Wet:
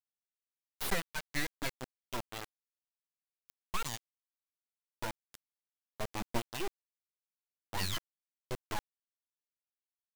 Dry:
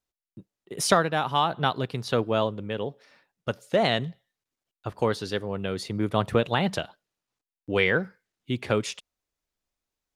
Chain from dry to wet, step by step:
spectral dynamics exaggerated over time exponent 3
full-wave rectification
bit reduction 5 bits
level −6.5 dB

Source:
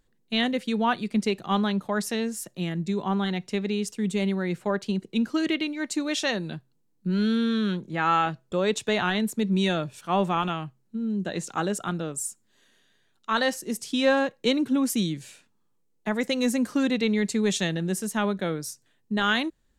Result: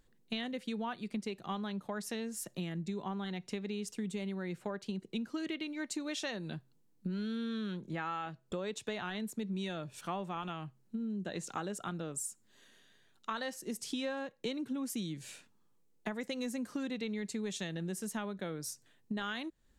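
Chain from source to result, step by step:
downward compressor 6 to 1, threshold −36 dBFS, peak gain reduction 18 dB

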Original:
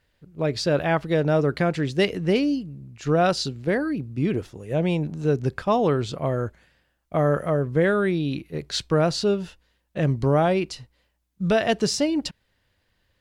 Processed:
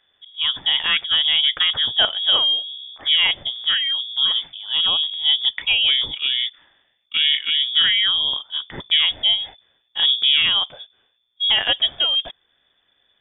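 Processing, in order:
parametric band 610 Hz −8 dB 0.39 octaves
voice inversion scrambler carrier 3,500 Hz
level +4 dB

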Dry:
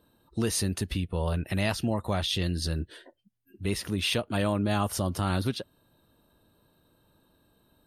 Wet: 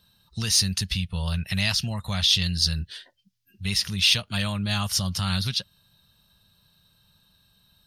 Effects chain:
drawn EQ curve 190 Hz 0 dB, 290 Hz −19 dB, 5,400 Hz +13 dB, 8,300 Hz +2 dB
in parallel at −8.5 dB: soft clipping −20 dBFS, distortion −13 dB

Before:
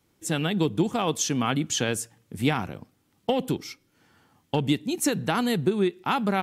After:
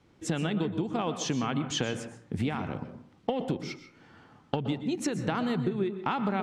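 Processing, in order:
low-pass filter 6,100 Hz 12 dB per octave
high-shelf EQ 3,800 Hz −9 dB
downward compressor 10 to 1, threshold −33 dBFS, peak gain reduction 16 dB
dense smooth reverb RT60 0.52 s, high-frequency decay 0.45×, pre-delay 110 ms, DRR 9.5 dB
level +6.5 dB

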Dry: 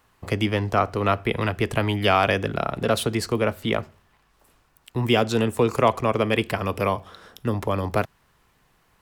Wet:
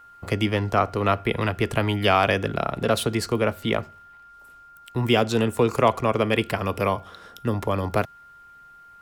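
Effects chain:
steady tone 1,400 Hz −46 dBFS

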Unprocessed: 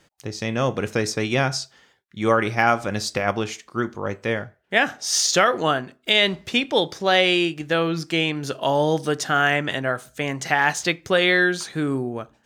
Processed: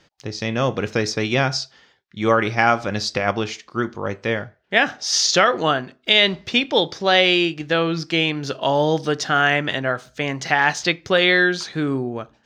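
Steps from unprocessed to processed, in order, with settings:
high shelf with overshoot 7,100 Hz −11.5 dB, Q 1.5
level +1.5 dB

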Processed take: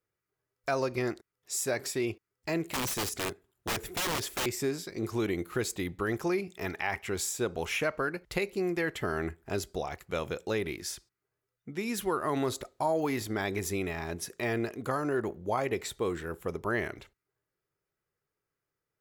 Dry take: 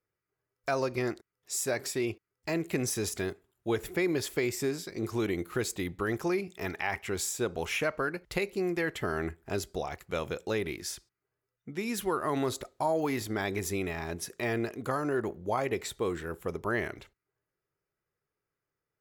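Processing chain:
0:02.69–0:04.46: wrap-around overflow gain 26.5 dB

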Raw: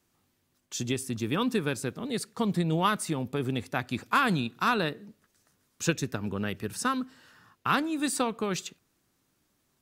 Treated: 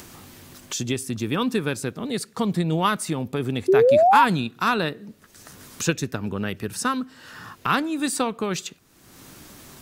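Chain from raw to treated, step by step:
sound drawn into the spectrogram rise, 0:03.68–0:04.25, 360–1,000 Hz −19 dBFS
upward compression, threshold −29 dBFS
level +4 dB

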